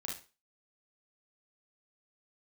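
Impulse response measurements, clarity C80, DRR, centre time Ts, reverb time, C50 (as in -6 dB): 13.5 dB, -2.5 dB, 33 ms, 0.35 s, 4.5 dB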